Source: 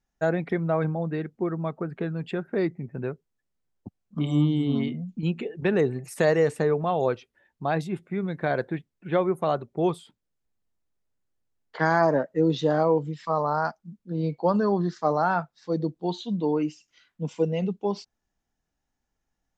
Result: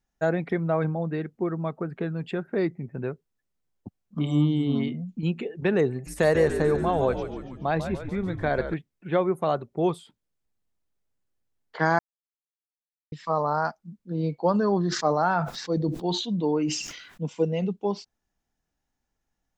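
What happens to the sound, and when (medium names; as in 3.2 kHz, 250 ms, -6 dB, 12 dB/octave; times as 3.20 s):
5.92–8.74 s: frequency-shifting echo 143 ms, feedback 61%, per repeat -83 Hz, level -9 dB
11.99–13.12 s: mute
14.67–17.23 s: decay stretcher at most 59 dB/s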